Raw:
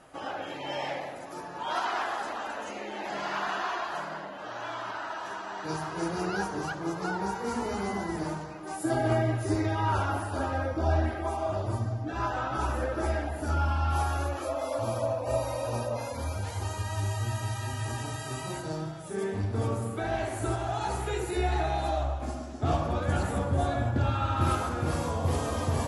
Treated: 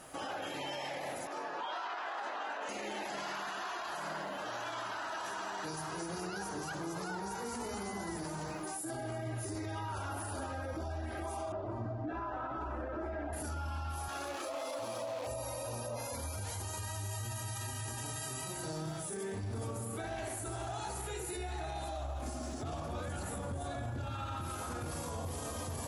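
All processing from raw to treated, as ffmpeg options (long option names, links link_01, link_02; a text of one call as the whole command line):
ffmpeg -i in.wav -filter_complex "[0:a]asettb=1/sr,asplit=3[link_01][link_02][link_03];[link_01]atrim=end=1.274[link_04];[link_02]atrim=start=1.27:end=2.69,asetpts=PTS-STARTPTS,afade=type=in:duration=0.004:curve=qsin,afade=type=out:start_time=1.416:duration=0.004:curve=qsin,highpass=360,lowpass=3400,asplit=2[link_05][link_06];[link_06]adelay=21,volume=-5.5dB[link_07];[link_05][link_07]amix=inputs=2:normalize=0,atrim=end_sample=62622[link_08];[link_03]atrim=start=2.686[link_09];[link_04][link_08]acrossfade=duration=0.004:curve1=hsin:curve2=qsin[link_10];[link_10][link_09]acrossfade=duration=0.004:curve1=qsin:curve2=hsin,asettb=1/sr,asplit=3[link_11][link_12][link_13];[link_11]atrim=end=11.524[link_14];[link_12]atrim=start=11.52:end=13.33,asetpts=PTS-STARTPTS,afade=type=in:duration=0.004:curve=qsin,afade=type=out:start_time=1.806:duration=0.004:curve=qsin,lowpass=1600,equalizer=frequency=88:width_type=o:width=0.76:gain=-8.5,aecho=1:1:3:0.35,atrim=end_sample=79821[link_15];[link_13]atrim=start=13.326[link_16];[link_14][link_15]acrossfade=duration=0.004:curve1=hsin:curve2=qsin[link_17];[link_17][link_16]acrossfade=duration=0.004:curve1=qsin:curve2=hsin,asettb=1/sr,asplit=3[link_18][link_19][link_20];[link_18]atrim=end=14.084[link_21];[link_19]atrim=start=14.08:end=15.27,asetpts=PTS-STARTPTS,afade=type=in:duration=0.004:curve=qsin,afade=type=out:start_time=1.186:duration=0.004:curve=qsin,aemphasis=mode=production:type=75fm,acrusher=bits=7:dc=4:mix=0:aa=0.000001,highpass=210,lowpass=3400[link_22];[link_20]atrim=start=15.266[link_23];[link_21][link_22]acrossfade=duration=0.004:curve1=hsin:curve2=qsin[link_24];[link_24][link_23]acrossfade=duration=0.004:curve1=qsin:curve2=hsin,aemphasis=mode=production:type=50fm,acompressor=threshold=-34dB:ratio=6,alimiter=level_in=9dB:limit=-24dB:level=0:latency=1:release=24,volume=-9dB,volume=1.5dB" out.wav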